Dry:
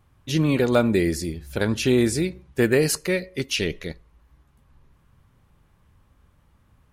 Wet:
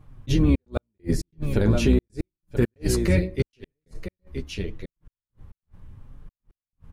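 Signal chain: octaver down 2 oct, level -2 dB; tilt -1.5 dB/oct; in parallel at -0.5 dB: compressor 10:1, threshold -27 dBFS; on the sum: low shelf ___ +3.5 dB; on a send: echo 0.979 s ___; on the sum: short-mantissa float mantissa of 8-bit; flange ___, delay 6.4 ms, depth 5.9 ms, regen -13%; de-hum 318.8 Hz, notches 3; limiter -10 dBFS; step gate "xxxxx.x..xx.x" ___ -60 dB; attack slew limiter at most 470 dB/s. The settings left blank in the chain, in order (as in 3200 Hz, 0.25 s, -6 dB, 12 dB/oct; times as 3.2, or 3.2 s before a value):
500 Hz, -10.5 dB, 0.8 Hz, 136 bpm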